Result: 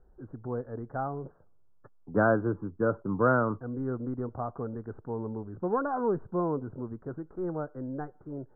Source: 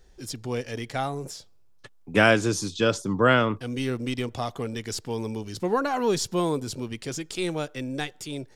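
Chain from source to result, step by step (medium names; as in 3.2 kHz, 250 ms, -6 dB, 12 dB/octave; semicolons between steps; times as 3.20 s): steep low-pass 1.5 kHz 72 dB/octave; trim -4 dB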